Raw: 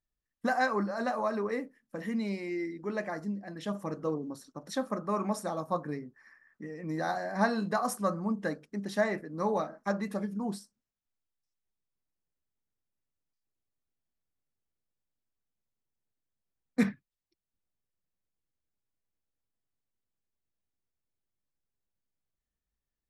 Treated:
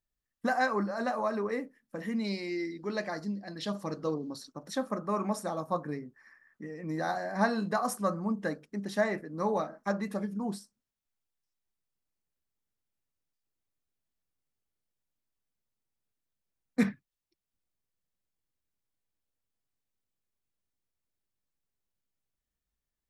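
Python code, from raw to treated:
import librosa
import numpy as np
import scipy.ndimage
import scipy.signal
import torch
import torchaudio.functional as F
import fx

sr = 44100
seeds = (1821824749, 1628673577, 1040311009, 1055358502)

y = fx.peak_eq(x, sr, hz=4400.0, db=13.5, octaves=0.67, at=(2.24, 4.47))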